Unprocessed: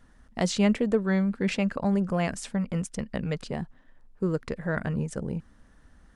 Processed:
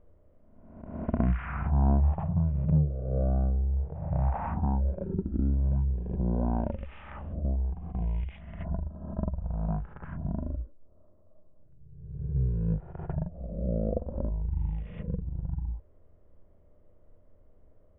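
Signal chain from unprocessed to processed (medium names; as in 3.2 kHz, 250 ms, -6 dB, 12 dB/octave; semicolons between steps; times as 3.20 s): reverse spectral sustain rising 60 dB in 0.38 s; low-pass 3 kHz 12 dB/octave; wide varispeed 0.342×; trim -2 dB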